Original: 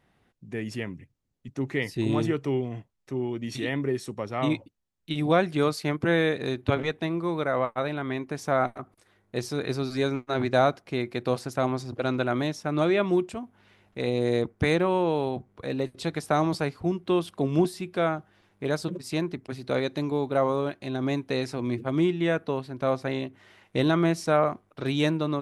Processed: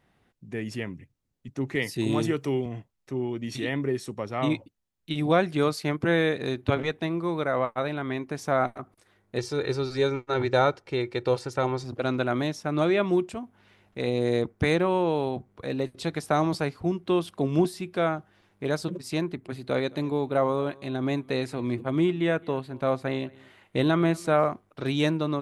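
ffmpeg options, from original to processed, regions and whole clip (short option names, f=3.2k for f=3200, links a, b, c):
-filter_complex "[0:a]asettb=1/sr,asplit=3[a][b][c];[a]atrim=end=1.754[d];[b]atrim=start=1.75:end=2.66,asetpts=PTS-STARTPTS,afade=t=in:d=0.004:c=qsin,afade=t=out:st=0.906:d=0.004:c=qsin,highpass=97,highshelf=f=5.2k:g=9,acompressor=mode=upward:threshold=-35dB:ratio=2.5:attack=3.2:release=140:knee=2.83:detection=peak[e];[c]atrim=start=2.656[f];[d][e]acrossfade=d=0.004:c1=hsin:c2=qsin[g];[g][f]acrossfade=d=0.004:c1=qsin:c2=hsin,asettb=1/sr,asplit=3[h][i][j];[h]atrim=end=9.384[k];[i]atrim=start=9.38:end=11.84,asetpts=PTS-STARTPTS,afade=t=in:d=0.004:c=qsin,afade=t=out:st=2.456:d=0.004:c=qsin,lowpass=7.8k,aecho=1:1:2.2:0.57,atrim=end_sample=108486[l];[j]atrim=start=11.836[m];[k][l]acrossfade=d=0.004:c1=hsin:c2=qsin[n];[n][m]acrossfade=d=0.004:c1=qsin:c2=hsin,asettb=1/sr,asplit=3[o][p][q];[o]atrim=end=19.244[r];[p]atrim=start=19.24:end=24.48,asetpts=PTS-STARTPTS,afade=t=in:d=0.004:c=qsin,afade=t=out:st=5.236:d=0.004:c=qsin,equalizer=f=5.5k:w=4.2:g=-9.5,aecho=1:1:217:0.0668,atrim=end_sample=231084[s];[q]atrim=start=24.476[t];[r][s]acrossfade=d=0.004:c1=hsin:c2=qsin[u];[u][t]acrossfade=d=0.004:c1=qsin:c2=hsin"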